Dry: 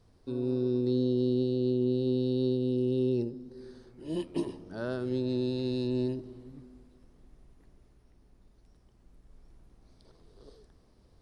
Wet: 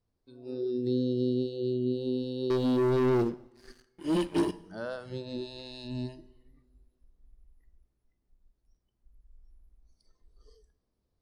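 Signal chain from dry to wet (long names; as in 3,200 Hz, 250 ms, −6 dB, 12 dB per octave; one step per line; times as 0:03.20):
noise reduction from a noise print of the clip's start 18 dB
0:02.50–0:04.51: leveller curve on the samples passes 3
coupled-rooms reverb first 0.86 s, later 2.8 s, from −25 dB, DRR 17 dB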